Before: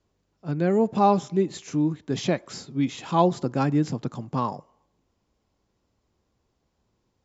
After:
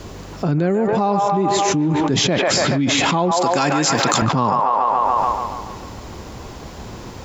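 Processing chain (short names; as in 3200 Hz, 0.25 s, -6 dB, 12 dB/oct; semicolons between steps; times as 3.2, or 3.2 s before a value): 3.31–4.22 tilt +4.5 dB/oct; on a send: band-limited delay 0.143 s, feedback 53%, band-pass 1200 Hz, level -3 dB; on the sum: fast leveller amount 100%; gain -1.5 dB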